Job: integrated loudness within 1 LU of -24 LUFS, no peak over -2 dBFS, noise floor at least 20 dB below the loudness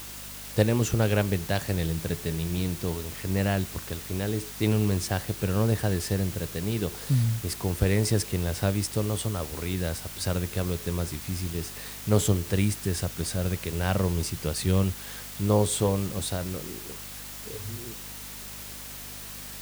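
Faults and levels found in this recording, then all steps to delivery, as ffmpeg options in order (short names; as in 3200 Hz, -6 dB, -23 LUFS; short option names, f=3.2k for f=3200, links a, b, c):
hum 50 Hz; harmonics up to 250 Hz; hum level -48 dBFS; noise floor -40 dBFS; noise floor target -49 dBFS; loudness -28.5 LUFS; peak -7.0 dBFS; loudness target -24.0 LUFS
-> -af "bandreject=f=50:t=h:w=4,bandreject=f=100:t=h:w=4,bandreject=f=150:t=h:w=4,bandreject=f=200:t=h:w=4,bandreject=f=250:t=h:w=4"
-af "afftdn=nr=9:nf=-40"
-af "volume=4.5dB"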